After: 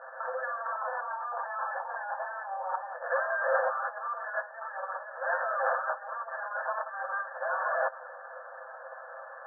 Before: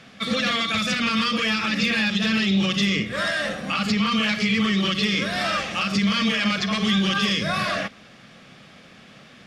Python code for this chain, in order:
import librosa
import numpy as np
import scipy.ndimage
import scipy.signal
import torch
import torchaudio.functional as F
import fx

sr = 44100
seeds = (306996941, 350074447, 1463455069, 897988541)

y = fx.lower_of_two(x, sr, delay_ms=7.6)
y = fx.peak_eq(y, sr, hz=860.0, db=14.0, octaves=0.88, at=(0.72, 2.94))
y = fx.over_compress(y, sr, threshold_db=-32.0, ratio=-1.0)
y = fx.brickwall_bandpass(y, sr, low_hz=490.0, high_hz=1800.0)
y = fx.air_absorb(y, sr, metres=410.0)
y = y * librosa.db_to_amplitude(5.5)